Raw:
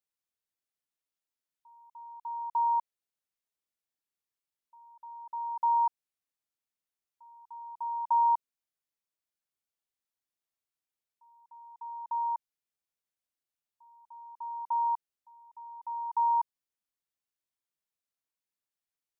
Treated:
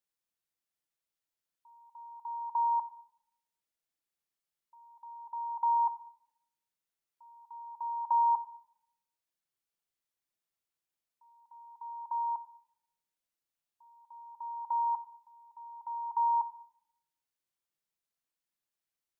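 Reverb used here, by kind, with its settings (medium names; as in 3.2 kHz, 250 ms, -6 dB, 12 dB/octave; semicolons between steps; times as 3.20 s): simulated room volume 2400 m³, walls furnished, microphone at 0.77 m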